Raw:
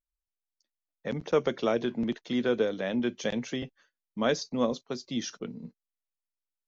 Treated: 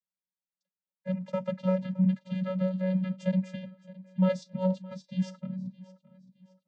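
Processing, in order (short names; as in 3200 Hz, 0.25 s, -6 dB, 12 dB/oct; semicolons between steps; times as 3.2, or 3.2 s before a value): vocoder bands 16, square 186 Hz; on a send: feedback echo 0.617 s, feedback 37%, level -19.5 dB; on the sum: gain +1.5 dB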